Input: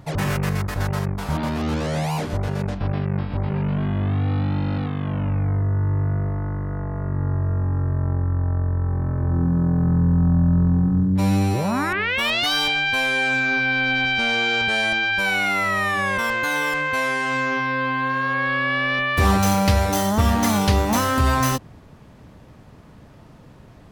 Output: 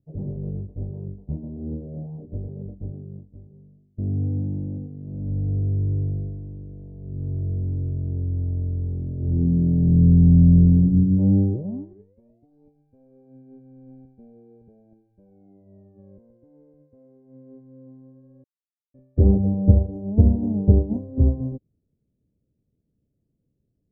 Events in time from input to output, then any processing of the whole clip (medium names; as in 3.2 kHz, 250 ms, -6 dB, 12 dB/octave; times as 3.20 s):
2.70–3.98 s: fade out, to -17 dB
18.44–18.94 s: mute
whole clip: inverse Chebyshev low-pass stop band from 1.2 kHz, stop band 50 dB; upward expansion 2.5:1, over -37 dBFS; trim +7 dB